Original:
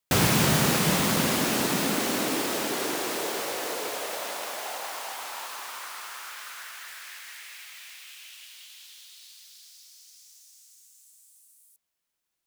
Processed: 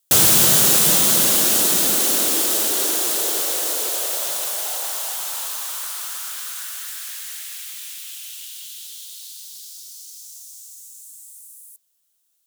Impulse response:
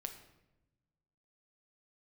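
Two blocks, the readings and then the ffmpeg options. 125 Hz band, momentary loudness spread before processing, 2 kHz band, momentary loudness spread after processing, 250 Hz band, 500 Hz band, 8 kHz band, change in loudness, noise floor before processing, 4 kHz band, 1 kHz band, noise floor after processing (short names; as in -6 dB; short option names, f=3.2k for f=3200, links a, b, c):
n/a, 22 LU, +0.5 dB, 23 LU, -2.0 dB, +1.5 dB, +13.5 dB, +10.5 dB, -83 dBFS, +8.0 dB, 0.0 dB, -68 dBFS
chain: -filter_complex "[0:a]asplit=2[a][b];[b]highpass=280,equalizer=f=320:t=q:w=4:g=8,equalizer=f=580:t=q:w=4:g=5,equalizer=f=950:t=q:w=4:g=-8,equalizer=f=1.5k:t=q:w=4:g=4,lowpass=f=5k:w=0.5412,lowpass=f=5k:w=1.3066[c];[1:a]atrim=start_sample=2205[d];[c][d]afir=irnorm=-1:irlink=0,volume=-3.5dB[e];[a][e]amix=inputs=2:normalize=0,aexciter=amount=5.1:drive=5.1:freq=3.2k,volume=-2.5dB"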